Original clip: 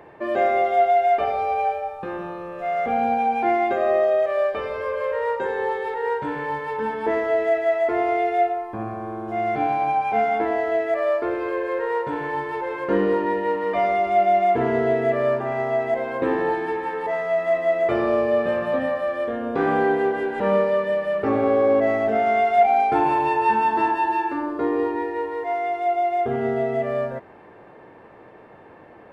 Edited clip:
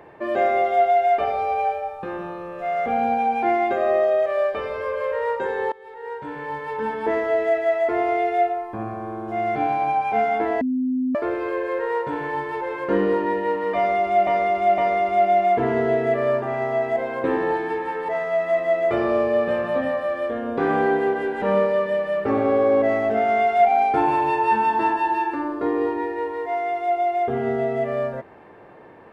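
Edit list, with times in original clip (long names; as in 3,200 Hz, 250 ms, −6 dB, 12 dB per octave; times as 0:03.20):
0:05.72–0:06.88: fade in, from −22.5 dB
0:10.61–0:11.15: beep over 256 Hz −19.5 dBFS
0:13.76–0:14.27: repeat, 3 plays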